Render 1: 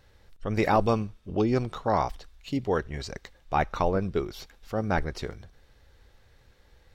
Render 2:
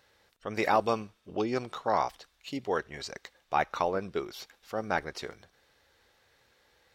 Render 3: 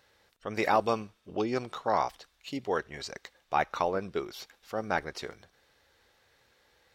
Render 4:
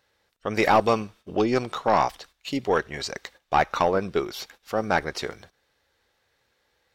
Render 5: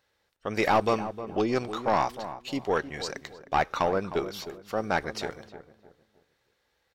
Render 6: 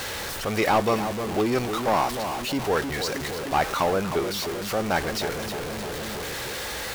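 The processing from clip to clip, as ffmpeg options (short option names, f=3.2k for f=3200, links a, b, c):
-af "highpass=f=550:p=1"
-af anull
-af "agate=range=-12dB:threshold=-57dB:ratio=16:detection=peak,aeval=exprs='(tanh(7.94*val(0)+0.2)-tanh(0.2))/7.94':c=same,volume=8.5dB"
-filter_complex "[0:a]asplit=2[a][b];[b]aeval=exprs='clip(val(0),-1,0.119)':c=same,volume=-4dB[c];[a][c]amix=inputs=2:normalize=0,asplit=2[d][e];[e]adelay=309,lowpass=f=1.1k:p=1,volume=-11dB,asplit=2[f][g];[g]adelay=309,lowpass=f=1.1k:p=1,volume=0.35,asplit=2[h][i];[i]adelay=309,lowpass=f=1.1k:p=1,volume=0.35,asplit=2[j][k];[k]adelay=309,lowpass=f=1.1k:p=1,volume=0.35[l];[d][f][h][j][l]amix=inputs=5:normalize=0,volume=-8dB"
-af "aeval=exprs='val(0)+0.5*0.0501*sgn(val(0))':c=same"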